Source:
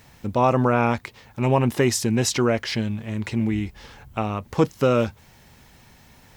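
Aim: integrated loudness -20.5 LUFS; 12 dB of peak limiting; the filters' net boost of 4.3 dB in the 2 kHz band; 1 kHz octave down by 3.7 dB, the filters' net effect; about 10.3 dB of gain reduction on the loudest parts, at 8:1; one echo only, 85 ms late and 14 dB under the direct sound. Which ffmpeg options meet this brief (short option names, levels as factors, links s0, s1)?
-af "equalizer=f=1000:t=o:g=-7,equalizer=f=2000:t=o:g=7.5,acompressor=threshold=0.0562:ratio=8,alimiter=limit=0.075:level=0:latency=1,aecho=1:1:85:0.2,volume=4.47"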